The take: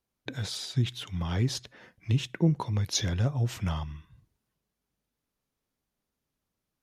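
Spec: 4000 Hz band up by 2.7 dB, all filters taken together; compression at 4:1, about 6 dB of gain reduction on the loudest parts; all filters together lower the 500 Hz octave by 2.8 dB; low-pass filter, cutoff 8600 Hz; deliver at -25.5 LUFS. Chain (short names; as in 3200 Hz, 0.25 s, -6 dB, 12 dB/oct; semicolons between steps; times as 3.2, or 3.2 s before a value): LPF 8600 Hz; bell 500 Hz -4 dB; bell 4000 Hz +3.5 dB; compressor 4:1, threshold -27 dBFS; gain +7.5 dB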